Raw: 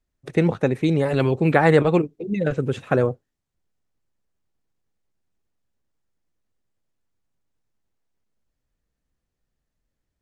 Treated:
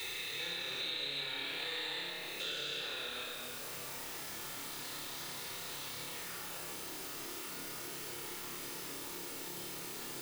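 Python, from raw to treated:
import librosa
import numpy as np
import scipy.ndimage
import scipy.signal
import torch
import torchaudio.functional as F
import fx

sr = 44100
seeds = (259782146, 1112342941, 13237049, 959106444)

p1 = fx.spec_steps(x, sr, hold_ms=400)
p2 = fx.recorder_agc(p1, sr, target_db=-11.5, rise_db_per_s=15.0, max_gain_db=30)
p3 = fx.riaa(p2, sr, side='recording')
p4 = fx.filter_sweep_bandpass(p3, sr, from_hz=3800.0, to_hz=360.0, start_s=6.0, end_s=6.67, q=4.0)
p5 = fx.quant_dither(p4, sr, seeds[0], bits=8, dither='triangular')
p6 = p4 + (p5 * librosa.db_to_amplitude(-9.0))
p7 = fx.room_flutter(p6, sr, wall_m=4.9, rt60_s=0.45)
p8 = fx.room_shoebox(p7, sr, seeds[1], volume_m3=3100.0, walls='mixed', distance_m=4.3)
p9 = fx.band_squash(p8, sr, depth_pct=100)
y = p9 * librosa.db_to_amplitude(-4.5)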